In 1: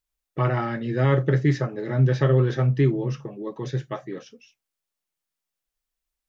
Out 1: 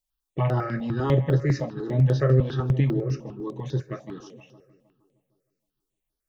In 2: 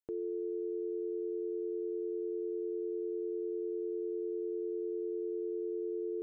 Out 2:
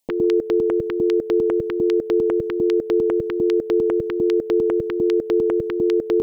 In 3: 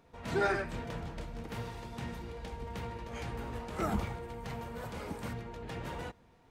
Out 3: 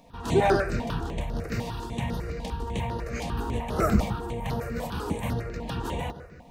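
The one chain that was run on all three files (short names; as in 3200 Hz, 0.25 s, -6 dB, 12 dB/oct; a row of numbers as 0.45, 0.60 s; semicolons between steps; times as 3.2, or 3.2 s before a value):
dynamic EQ 1900 Hz, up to -4 dB, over -50 dBFS, Q 2.4; on a send: darkening echo 0.155 s, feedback 63%, low-pass 3400 Hz, level -15 dB; on the sum: step phaser 10 Hz 380–7700 Hz; normalise peaks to -9 dBFS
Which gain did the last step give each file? +1.0, +21.0, +12.0 dB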